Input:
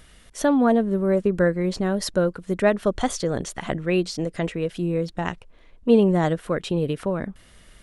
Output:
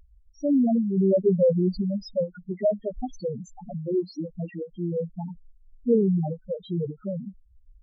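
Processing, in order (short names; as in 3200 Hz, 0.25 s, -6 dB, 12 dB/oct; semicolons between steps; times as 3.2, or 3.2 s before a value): 0.97–1.81 sample leveller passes 2; loudest bins only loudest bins 2; ending taper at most 320 dB/s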